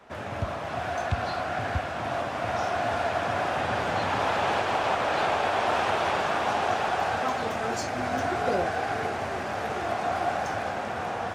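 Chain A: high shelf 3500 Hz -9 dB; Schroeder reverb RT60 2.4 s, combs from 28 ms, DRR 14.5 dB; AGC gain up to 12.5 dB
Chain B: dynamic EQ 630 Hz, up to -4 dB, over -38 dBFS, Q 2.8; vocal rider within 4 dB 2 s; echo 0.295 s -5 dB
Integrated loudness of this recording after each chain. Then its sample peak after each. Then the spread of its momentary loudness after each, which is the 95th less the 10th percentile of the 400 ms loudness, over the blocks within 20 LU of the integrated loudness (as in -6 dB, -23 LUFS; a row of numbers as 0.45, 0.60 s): -17.0, -27.5 LUFS; -3.0, -12.0 dBFS; 5, 3 LU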